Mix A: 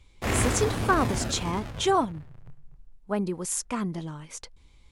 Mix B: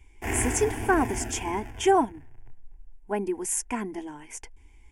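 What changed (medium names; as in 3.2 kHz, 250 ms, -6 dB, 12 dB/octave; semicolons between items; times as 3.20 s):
speech +4.0 dB; master: add static phaser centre 820 Hz, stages 8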